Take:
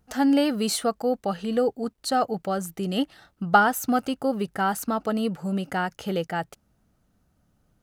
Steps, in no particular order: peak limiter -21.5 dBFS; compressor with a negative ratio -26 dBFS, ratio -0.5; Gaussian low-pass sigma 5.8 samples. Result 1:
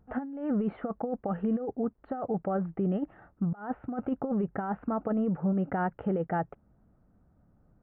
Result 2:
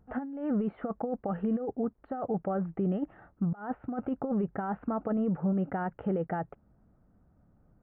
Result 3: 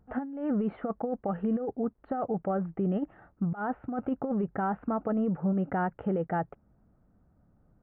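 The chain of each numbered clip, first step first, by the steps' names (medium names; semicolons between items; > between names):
compressor with a negative ratio > Gaussian low-pass > peak limiter; compressor with a negative ratio > peak limiter > Gaussian low-pass; Gaussian low-pass > compressor with a negative ratio > peak limiter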